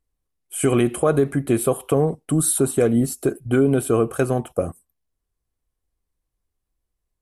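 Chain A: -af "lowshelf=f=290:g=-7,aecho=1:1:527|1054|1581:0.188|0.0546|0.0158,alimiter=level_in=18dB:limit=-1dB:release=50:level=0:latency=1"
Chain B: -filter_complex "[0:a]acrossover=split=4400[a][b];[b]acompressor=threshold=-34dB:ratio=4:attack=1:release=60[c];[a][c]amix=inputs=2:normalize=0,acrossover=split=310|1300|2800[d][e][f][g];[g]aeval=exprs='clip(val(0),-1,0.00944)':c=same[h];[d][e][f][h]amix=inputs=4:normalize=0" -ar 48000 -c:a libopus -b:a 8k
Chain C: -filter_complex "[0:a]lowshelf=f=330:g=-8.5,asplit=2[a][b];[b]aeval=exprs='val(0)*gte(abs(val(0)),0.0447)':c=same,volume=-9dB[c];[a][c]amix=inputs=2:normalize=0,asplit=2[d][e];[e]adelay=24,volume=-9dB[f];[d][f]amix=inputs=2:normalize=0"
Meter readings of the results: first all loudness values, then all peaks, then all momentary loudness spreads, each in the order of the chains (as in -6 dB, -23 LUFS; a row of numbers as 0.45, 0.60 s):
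-11.0, -21.5, -21.0 LUFS; -1.0, -5.5, -4.5 dBFS; 8, 6, 7 LU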